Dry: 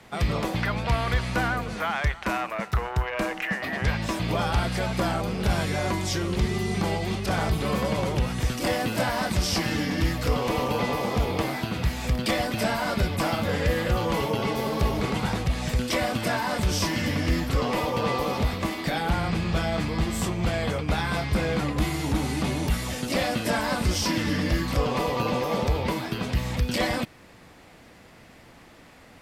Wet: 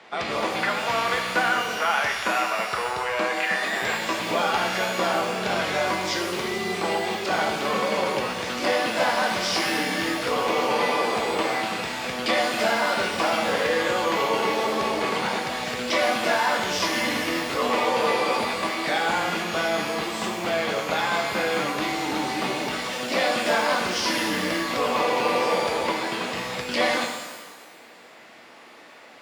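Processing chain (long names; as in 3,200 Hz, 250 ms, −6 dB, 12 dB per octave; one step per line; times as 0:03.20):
band-pass filter 390–4,700 Hz
reverb with rising layers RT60 1.2 s, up +12 semitones, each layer −8 dB, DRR 2.5 dB
level +3.5 dB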